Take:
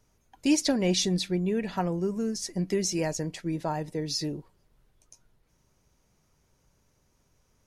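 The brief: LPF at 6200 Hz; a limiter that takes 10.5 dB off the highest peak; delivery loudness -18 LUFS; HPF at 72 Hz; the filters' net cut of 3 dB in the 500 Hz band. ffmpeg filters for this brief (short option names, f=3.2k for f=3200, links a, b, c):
-af "highpass=72,lowpass=6.2k,equalizer=f=500:t=o:g=-4,volume=16dB,alimiter=limit=-9dB:level=0:latency=1"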